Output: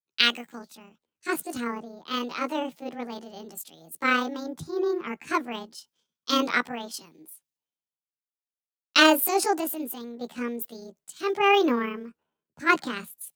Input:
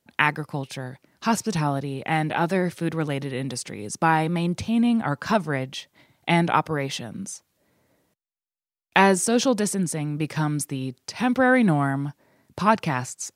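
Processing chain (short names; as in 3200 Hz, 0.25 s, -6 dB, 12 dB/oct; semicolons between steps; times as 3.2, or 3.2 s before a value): delay-line pitch shifter +8 st; three-band expander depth 100%; gain -5 dB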